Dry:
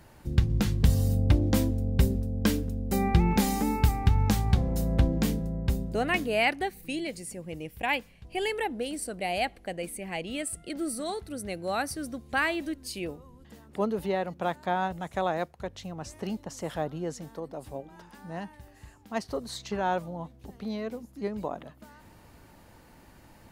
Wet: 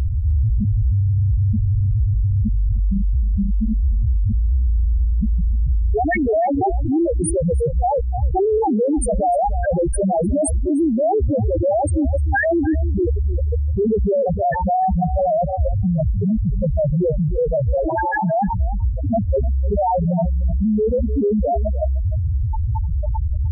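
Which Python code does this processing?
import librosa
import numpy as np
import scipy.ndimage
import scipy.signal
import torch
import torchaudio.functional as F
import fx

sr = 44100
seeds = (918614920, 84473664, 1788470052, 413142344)

y = fx.bin_compress(x, sr, power=0.6)
y = fx.tilt_shelf(y, sr, db=-3.5, hz=700.0, at=(14.1, 14.62))
y = fx.fuzz(y, sr, gain_db=42.0, gate_db=-37.0)
y = fx.highpass(y, sr, hz=150.0, slope=12, at=(17.88, 18.35))
y = fx.dynamic_eq(y, sr, hz=210.0, q=1.4, threshold_db=-33.0, ratio=4.0, max_db=-8)
y = fx.leveller(y, sr, passes=3)
y = fx.transient(y, sr, attack_db=6, sustain_db=-11)
y = fx.spec_topn(y, sr, count=1)
y = y + 10.0 ** (-18.0 / 20.0) * np.pad(y, (int(304 * sr / 1000.0), 0))[:len(y)]
y = fx.env_flatten(y, sr, amount_pct=70)
y = y * librosa.db_to_amplitude(-1.5)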